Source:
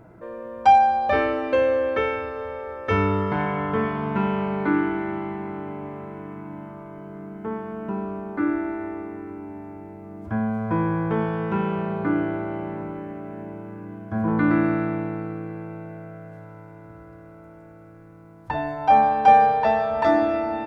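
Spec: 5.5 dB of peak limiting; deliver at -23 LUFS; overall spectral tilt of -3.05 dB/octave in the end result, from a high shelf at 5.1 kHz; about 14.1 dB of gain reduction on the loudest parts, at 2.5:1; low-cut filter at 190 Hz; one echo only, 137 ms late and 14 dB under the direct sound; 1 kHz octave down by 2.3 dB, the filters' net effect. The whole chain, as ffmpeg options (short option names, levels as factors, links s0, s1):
-af "highpass=190,equalizer=f=1000:t=o:g=-3.5,highshelf=f=5100:g=8.5,acompressor=threshold=0.02:ratio=2.5,alimiter=level_in=1.19:limit=0.0631:level=0:latency=1,volume=0.841,aecho=1:1:137:0.2,volume=4.22"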